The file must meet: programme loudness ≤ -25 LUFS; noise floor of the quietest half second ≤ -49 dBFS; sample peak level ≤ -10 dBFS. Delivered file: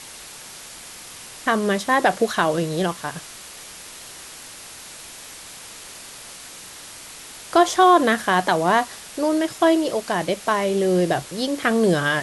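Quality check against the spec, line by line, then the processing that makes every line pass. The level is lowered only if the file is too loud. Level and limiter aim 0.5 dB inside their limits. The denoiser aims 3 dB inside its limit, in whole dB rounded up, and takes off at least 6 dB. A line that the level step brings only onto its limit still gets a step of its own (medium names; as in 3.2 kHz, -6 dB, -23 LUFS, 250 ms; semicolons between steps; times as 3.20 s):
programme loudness -20.0 LUFS: fail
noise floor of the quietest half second -40 dBFS: fail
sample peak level -3.5 dBFS: fail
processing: noise reduction 7 dB, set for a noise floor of -40 dBFS; trim -5.5 dB; peak limiter -10.5 dBFS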